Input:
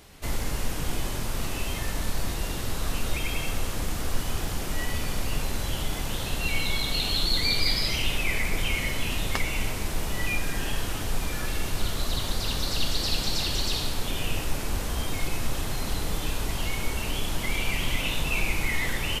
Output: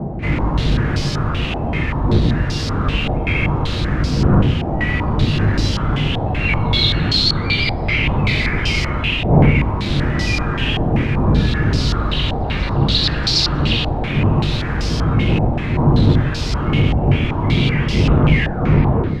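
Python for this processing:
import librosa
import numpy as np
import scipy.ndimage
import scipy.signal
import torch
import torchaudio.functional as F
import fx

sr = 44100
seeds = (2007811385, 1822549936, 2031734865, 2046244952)

p1 = fx.tape_stop_end(x, sr, length_s=1.06)
p2 = fx.dmg_wind(p1, sr, seeds[0], corner_hz=200.0, level_db=-24.0)
p3 = scipy.signal.sosfilt(scipy.signal.butter(2, 52.0, 'highpass', fs=sr, output='sos'), p2)
p4 = fx.low_shelf(p3, sr, hz=300.0, db=6.5)
p5 = fx.rider(p4, sr, range_db=4, speed_s=0.5)
p6 = p4 + F.gain(torch.from_numpy(p5), 1.0).numpy()
p7 = 10.0 ** (-7.5 / 20.0) * np.tanh(p6 / 10.0 ** (-7.5 / 20.0))
p8 = p7 + 10.0 ** (-19.5 / 20.0) * np.pad(p7, (int(786 * sr / 1000.0), 0))[:len(p7)]
p9 = fx.room_shoebox(p8, sr, seeds[1], volume_m3=60.0, walls='mixed', distance_m=0.51)
p10 = fx.filter_held_lowpass(p9, sr, hz=5.2, low_hz=770.0, high_hz=5000.0)
y = F.gain(torch.from_numpy(p10), -4.0).numpy()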